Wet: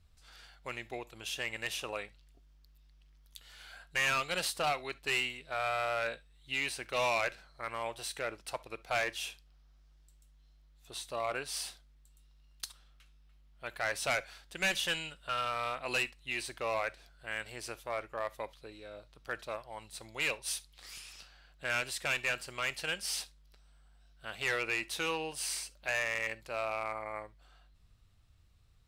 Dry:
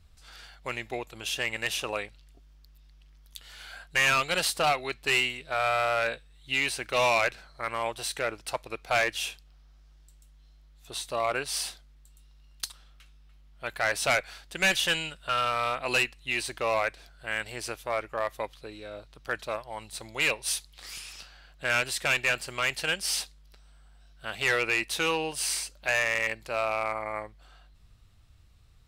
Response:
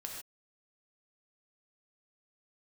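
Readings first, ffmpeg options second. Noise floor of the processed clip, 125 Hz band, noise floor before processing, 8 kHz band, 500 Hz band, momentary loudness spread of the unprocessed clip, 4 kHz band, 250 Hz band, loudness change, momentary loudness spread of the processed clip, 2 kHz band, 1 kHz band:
−62 dBFS, −7.0 dB, −56 dBFS, −7.0 dB, −7.0 dB, 15 LU, −7.0 dB, −7.0 dB, −7.0 dB, 16 LU, −7.0 dB, −7.0 dB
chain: -filter_complex "[0:a]asplit=2[link_01][link_02];[1:a]atrim=start_sample=2205,asetrate=88200,aresample=44100[link_03];[link_02][link_03]afir=irnorm=-1:irlink=0,volume=-6.5dB[link_04];[link_01][link_04]amix=inputs=2:normalize=0,volume=-8dB"

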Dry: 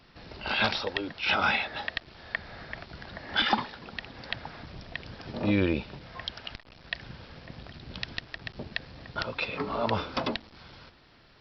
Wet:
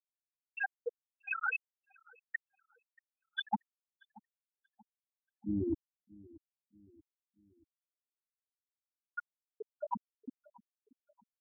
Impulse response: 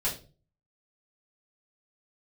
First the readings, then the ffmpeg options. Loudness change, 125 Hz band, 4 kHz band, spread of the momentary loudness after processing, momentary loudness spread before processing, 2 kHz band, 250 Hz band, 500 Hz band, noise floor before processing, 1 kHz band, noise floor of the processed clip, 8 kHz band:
−8.5 dB, −14.0 dB, −21.0 dB, 18 LU, 19 LU, −10.5 dB, −9.0 dB, −12.0 dB, −58 dBFS, −11.0 dB, below −85 dBFS, can't be measured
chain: -filter_complex "[0:a]bandreject=frequency=45.77:width_type=h:width=4,bandreject=frequency=91.54:width_type=h:width=4,bandreject=frequency=137.31:width_type=h:width=4,bandreject=frequency=183.08:width_type=h:width=4,bandreject=frequency=228.85:width_type=h:width=4,bandreject=frequency=274.62:width_type=h:width=4,bandreject=frequency=320.39:width_type=h:width=4,bandreject=frequency=366.16:width_type=h:width=4,bandreject=frequency=411.93:width_type=h:width=4,bandreject=frequency=457.7:width_type=h:width=4,bandreject=frequency=503.47:width_type=h:width=4,bandreject=frequency=549.24:width_type=h:width=4,bandreject=frequency=595.01:width_type=h:width=4,bandreject=frequency=640.78:width_type=h:width=4,bandreject=frequency=686.55:width_type=h:width=4,afftfilt=real='re*gte(hypot(re,im),0.316)':imag='im*gte(hypot(re,im),0.316)':win_size=1024:overlap=0.75,highshelf=frequency=4300:gain=-11,areverse,acompressor=threshold=-37dB:ratio=6,areverse,asplit=2[link_01][link_02];[link_02]adelay=632,lowpass=frequency=980:poles=1,volume=-22dB,asplit=2[link_03][link_04];[link_04]adelay=632,lowpass=frequency=980:poles=1,volume=0.49,asplit=2[link_05][link_06];[link_06]adelay=632,lowpass=frequency=980:poles=1,volume=0.49[link_07];[link_01][link_03][link_05][link_07]amix=inputs=4:normalize=0,volume=5.5dB"

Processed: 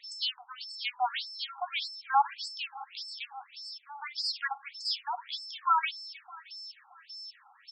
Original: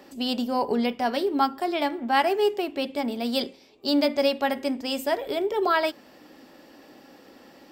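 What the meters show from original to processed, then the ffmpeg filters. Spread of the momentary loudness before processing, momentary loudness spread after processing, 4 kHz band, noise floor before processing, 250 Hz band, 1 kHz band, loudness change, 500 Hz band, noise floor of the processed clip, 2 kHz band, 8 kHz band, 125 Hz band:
6 LU, 16 LU, −2.5 dB, −53 dBFS, below −40 dB, −4.0 dB, −8.0 dB, −28.5 dB, −61 dBFS, −6.0 dB, −5.5 dB, can't be measured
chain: -filter_complex "[0:a]aeval=exprs='val(0)+0.00562*sin(2*PI*5300*n/s)':channel_layout=same,aemphasis=mode=production:type=cd,asplit=2[link_01][link_02];[link_02]aecho=0:1:312|624|936|1248|1560:0.133|0.0733|0.0403|0.0222|0.0122[link_03];[link_01][link_03]amix=inputs=2:normalize=0,afftfilt=real='re*between(b*sr/1024,980*pow(6200/980,0.5+0.5*sin(2*PI*1.7*pts/sr))/1.41,980*pow(6200/980,0.5+0.5*sin(2*PI*1.7*pts/sr))*1.41)':imag='im*between(b*sr/1024,980*pow(6200/980,0.5+0.5*sin(2*PI*1.7*pts/sr))/1.41,980*pow(6200/980,0.5+0.5*sin(2*PI*1.7*pts/sr))*1.41)':win_size=1024:overlap=0.75"

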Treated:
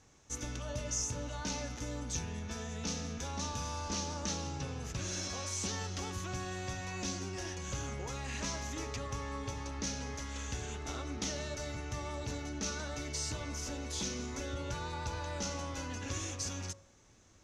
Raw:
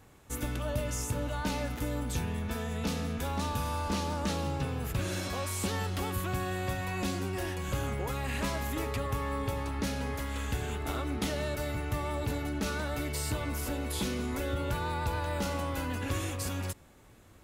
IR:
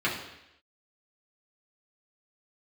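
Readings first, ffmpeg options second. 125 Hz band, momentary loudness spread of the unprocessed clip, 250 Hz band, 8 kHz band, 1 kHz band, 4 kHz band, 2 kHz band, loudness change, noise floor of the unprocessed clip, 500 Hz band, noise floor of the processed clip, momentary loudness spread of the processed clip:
−7.0 dB, 2 LU, −7.0 dB, +3.0 dB, −6.5 dB, −1.0 dB, −6.0 dB, −5.0 dB, −56 dBFS, −7.0 dB, −61 dBFS, 4 LU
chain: -af "lowpass=frequency=6100:width_type=q:width=5.9,bandreject=frequency=50.15:width_type=h:width=4,bandreject=frequency=100.3:width_type=h:width=4,bandreject=frequency=150.45:width_type=h:width=4,bandreject=frequency=200.6:width_type=h:width=4,bandreject=frequency=250.75:width_type=h:width=4,bandreject=frequency=300.9:width_type=h:width=4,bandreject=frequency=351.05:width_type=h:width=4,bandreject=frequency=401.2:width_type=h:width=4,bandreject=frequency=451.35:width_type=h:width=4,bandreject=frequency=501.5:width_type=h:width=4,bandreject=frequency=551.65:width_type=h:width=4,bandreject=frequency=601.8:width_type=h:width=4,bandreject=frequency=651.95:width_type=h:width=4,bandreject=frequency=702.1:width_type=h:width=4,bandreject=frequency=752.25:width_type=h:width=4,bandreject=frequency=802.4:width_type=h:width=4,bandreject=frequency=852.55:width_type=h:width=4,bandreject=frequency=902.7:width_type=h:width=4,bandreject=frequency=952.85:width_type=h:width=4,bandreject=frequency=1003:width_type=h:width=4,bandreject=frequency=1053.15:width_type=h:width=4,bandreject=frequency=1103.3:width_type=h:width=4,bandreject=frequency=1153.45:width_type=h:width=4,bandreject=frequency=1203.6:width_type=h:width=4,bandreject=frequency=1253.75:width_type=h:width=4,bandreject=frequency=1303.9:width_type=h:width=4,bandreject=frequency=1354.05:width_type=h:width=4,bandreject=frequency=1404.2:width_type=h:width=4,bandreject=frequency=1454.35:width_type=h:width=4,bandreject=frequency=1504.5:width_type=h:width=4,bandreject=frequency=1554.65:width_type=h:width=4,bandreject=frequency=1604.8:width_type=h:width=4,volume=-6.5dB"

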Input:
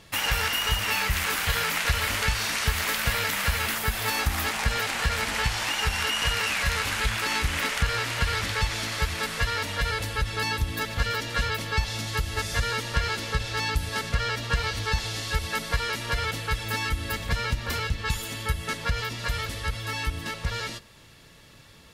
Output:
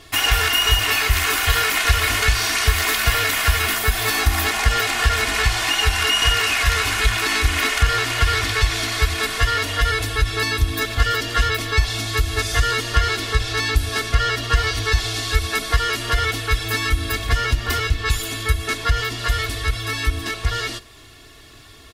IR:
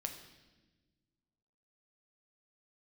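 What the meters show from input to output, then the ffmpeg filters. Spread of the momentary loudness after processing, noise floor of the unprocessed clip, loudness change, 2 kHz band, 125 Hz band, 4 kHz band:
6 LU, −51 dBFS, +7.5 dB, +7.0 dB, +7.0 dB, +8.0 dB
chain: -af "aecho=1:1:2.8:0.83,volume=5dB"

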